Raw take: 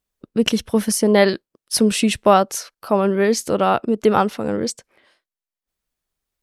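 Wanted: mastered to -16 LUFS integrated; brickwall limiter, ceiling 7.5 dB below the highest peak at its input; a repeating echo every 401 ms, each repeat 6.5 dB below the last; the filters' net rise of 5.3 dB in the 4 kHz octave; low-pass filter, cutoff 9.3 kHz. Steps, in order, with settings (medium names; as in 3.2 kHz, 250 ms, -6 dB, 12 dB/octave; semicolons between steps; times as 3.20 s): low-pass 9.3 kHz; peaking EQ 4 kHz +7.5 dB; peak limiter -7 dBFS; feedback delay 401 ms, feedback 47%, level -6.5 dB; trim +3 dB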